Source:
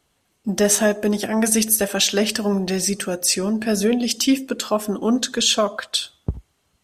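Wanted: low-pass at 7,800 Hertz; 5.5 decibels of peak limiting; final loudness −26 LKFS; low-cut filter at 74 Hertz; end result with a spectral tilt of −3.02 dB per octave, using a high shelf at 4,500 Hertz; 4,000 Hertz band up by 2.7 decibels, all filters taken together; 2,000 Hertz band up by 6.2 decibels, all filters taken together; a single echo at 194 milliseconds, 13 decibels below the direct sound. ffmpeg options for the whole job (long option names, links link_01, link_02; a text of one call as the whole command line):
ffmpeg -i in.wav -af "highpass=74,lowpass=7800,equalizer=frequency=2000:width_type=o:gain=8,equalizer=frequency=4000:width_type=o:gain=3,highshelf=frequency=4500:gain=-3.5,alimiter=limit=-9dB:level=0:latency=1,aecho=1:1:194:0.224,volume=-5.5dB" out.wav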